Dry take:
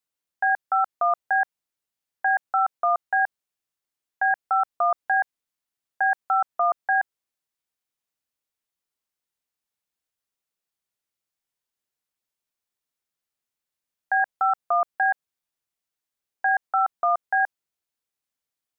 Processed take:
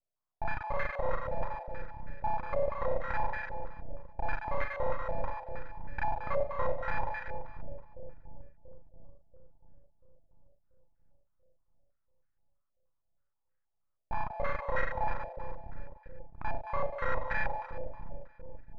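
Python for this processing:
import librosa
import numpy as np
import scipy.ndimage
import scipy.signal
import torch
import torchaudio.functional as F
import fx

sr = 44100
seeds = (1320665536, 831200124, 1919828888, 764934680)

y = fx.local_reverse(x, sr, ms=32.0)
y = fx.low_shelf(y, sr, hz=380.0, db=7.0)
y = 10.0 ** (-22.0 / 20.0) * np.tanh(y / 10.0 ** (-22.0 / 20.0))
y = fx.comb_fb(y, sr, f0_hz=630.0, decay_s=0.17, harmonics='all', damping=0.0, mix_pct=70)
y = np.abs(y)
y = fx.doubler(y, sr, ms=39.0, db=-7.5)
y = fx.echo_split(y, sr, split_hz=480.0, low_ms=686, high_ms=189, feedback_pct=52, wet_db=-5.5)
y = fx.filter_held_lowpass(y, sr, hz=6.3, low_hz=630.0, high_hz=1600.0)
y = y * librosa.db_to_amplitude(5.5)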